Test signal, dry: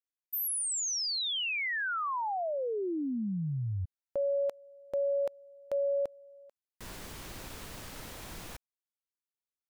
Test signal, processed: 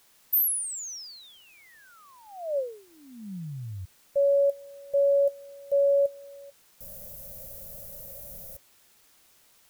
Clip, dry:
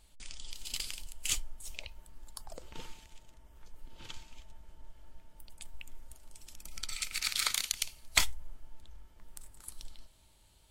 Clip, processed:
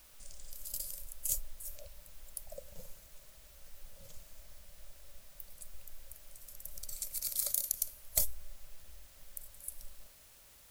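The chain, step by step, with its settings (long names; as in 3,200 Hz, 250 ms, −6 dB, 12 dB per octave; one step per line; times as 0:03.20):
drawn EQ curve 190 Hz 0 dB, 360 Hz −24 dB, 560 Hz +12 dB, 890 Hz −17 dB, 2,900 Hz −20 dB, 5,800 Hz −2 dB, 8,400 Hz +2 dB, 13,000 Hz +15 dB
in parallel at −5 dB: bit-depth reduction 8 bits, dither triangular
on the sum: level −7.5 dB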